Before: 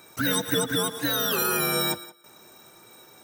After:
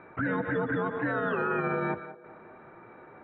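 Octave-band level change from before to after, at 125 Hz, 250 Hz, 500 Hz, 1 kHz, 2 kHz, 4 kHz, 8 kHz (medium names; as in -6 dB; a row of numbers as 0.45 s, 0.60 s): -1.5 dB, -1.5 dB, -1.0 dB, -0.5 dB, -2.0 dB, -28.5 dB, under -40 dB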